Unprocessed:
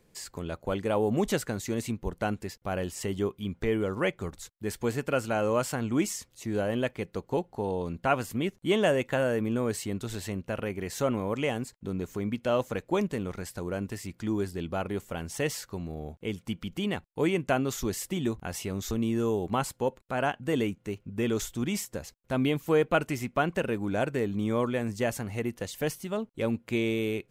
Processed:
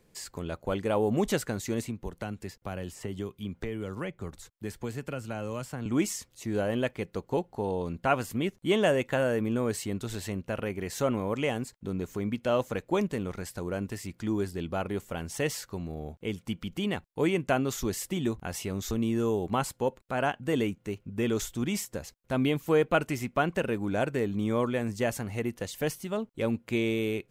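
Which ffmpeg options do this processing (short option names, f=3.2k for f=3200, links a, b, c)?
-filter_complex "[0:a]asettb=1/sr,asplit=3[a][b][c];[a]atrim=end=1.844[d];[b]atrim=start=1.84:end=5.86,asetpts=PTS-STARTPTS,afade=t=in:d=0.004:c=qsin,afade=t=out:st=4.016:d=0.004:c=qsin,acrossover=split=210|2000[e][f][g];[e]acompressor=threshold=-36dB:ratio=4[h];[f]acompressor=threshold=-37dB:ratio=4[i];[g]acompressor=threshold=-48dB:ratio=4[j];[h][i][j]amix=inputs=3:normalize=0[k];[c]atrim=start=5.856[l];[d][k]acrossfade=d=0.004:c1=hsin:c2=qsin[m];[m][l]acrossfade=d=0.004:c1=qsin:c2=hsin"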